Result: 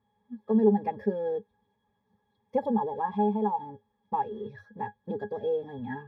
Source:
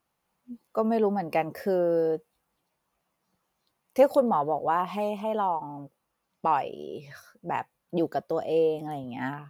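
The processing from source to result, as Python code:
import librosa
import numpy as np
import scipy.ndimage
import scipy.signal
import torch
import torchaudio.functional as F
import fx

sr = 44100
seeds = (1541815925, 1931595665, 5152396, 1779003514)

y = fx.law_mismatch(x, sr, coded='mu')
y = fx.stretch_vocoder(y, sr, factor=0.64)
y = fx.octave_resonator(y, sr, note='G#', decay_s=0.1)
y = y * 10.0 ** (7.5 / 20.0)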